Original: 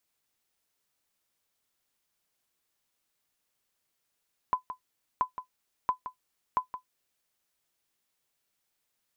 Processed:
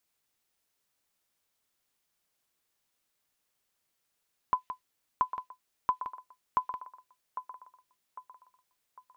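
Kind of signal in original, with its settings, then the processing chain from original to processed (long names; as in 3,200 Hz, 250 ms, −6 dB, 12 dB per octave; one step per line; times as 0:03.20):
ping with an echo 1,010 Hz, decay 0.11 s, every 0.68 s, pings 4, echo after 0.17 s, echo −11.5 dB −16.5 dBFS
dynamic equaliser 2,800 Hz, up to +7 dB, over −51 dBFS, Q 0.92
delay with a band-pass on its return 802 ms, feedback 41%, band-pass 860 Hz, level −10.5 dB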